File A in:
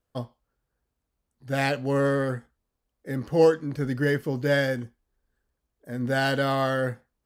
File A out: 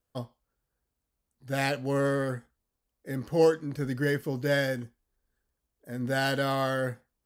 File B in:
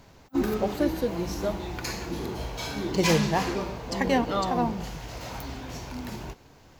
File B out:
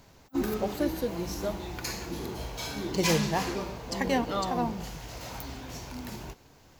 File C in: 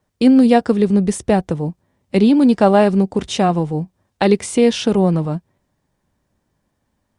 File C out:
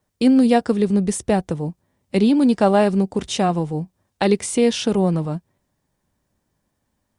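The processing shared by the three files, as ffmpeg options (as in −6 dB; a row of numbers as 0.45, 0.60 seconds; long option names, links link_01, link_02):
-af "highshelf=frequency=5800:gain=6.5,volume=-3.5dB"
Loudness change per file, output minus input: −3.5, −3.0, −3.5 LU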